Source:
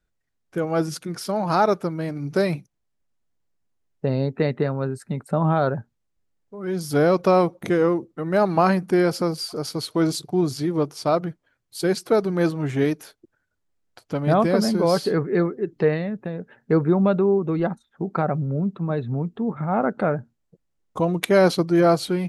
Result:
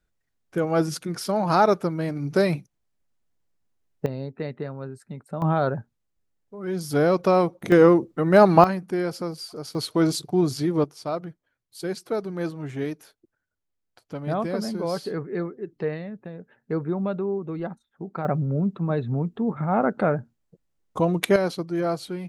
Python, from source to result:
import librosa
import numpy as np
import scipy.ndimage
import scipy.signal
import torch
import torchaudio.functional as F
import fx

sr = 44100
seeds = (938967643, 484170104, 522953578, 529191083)

y = fx.gain(x, sr, db=fx.steps((0.0, 0.5), (4.06, -9.5), (5.42, -2.0), (7.72, 5.0), (8.64, -7.0), (9.75, 0.0), (10.84, -8.0), (18.25, 0.0), (21.36, -8.5)))